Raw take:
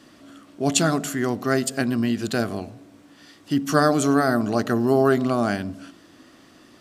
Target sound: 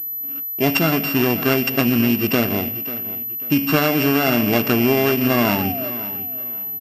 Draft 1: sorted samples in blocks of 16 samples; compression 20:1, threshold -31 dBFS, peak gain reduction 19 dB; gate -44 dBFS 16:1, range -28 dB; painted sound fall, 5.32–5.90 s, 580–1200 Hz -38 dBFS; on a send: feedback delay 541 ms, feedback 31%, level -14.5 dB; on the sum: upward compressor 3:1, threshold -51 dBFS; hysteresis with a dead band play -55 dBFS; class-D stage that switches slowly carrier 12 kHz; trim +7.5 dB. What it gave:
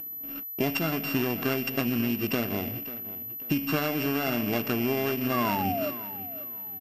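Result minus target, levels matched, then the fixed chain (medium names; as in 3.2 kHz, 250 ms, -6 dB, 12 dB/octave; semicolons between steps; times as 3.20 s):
compression: peak gain reduction +10.5 dB
sorted samples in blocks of 16 samples; compression 20:1, threshold -20 dBFS, peak gain reduction 8.5 dB; gate -44 dBFS 16:1, range -28 dB; painted sound fall, 5.32–5.90 s, 580–1200 Hz -38 dBFS; on a send: feedback delay 541 ms, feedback 31%, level -14.5 dB; on the sum: upward compressor 3:1, threshold -51 dBFS; hysteresis with a dead band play -55 dBFS; class-D stage that switches slowly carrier 12 kHz; trim +7.5 dB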